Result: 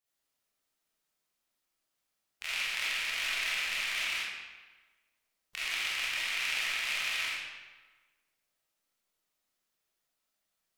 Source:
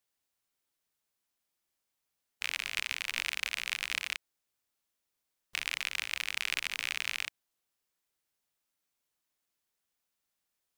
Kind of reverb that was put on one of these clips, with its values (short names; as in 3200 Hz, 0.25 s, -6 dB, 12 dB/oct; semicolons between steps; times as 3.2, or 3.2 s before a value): digital reverb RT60 1.3 s, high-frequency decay 0.8×, pre-delay 5 ms, DRR -9.5 dB; gain -7 dB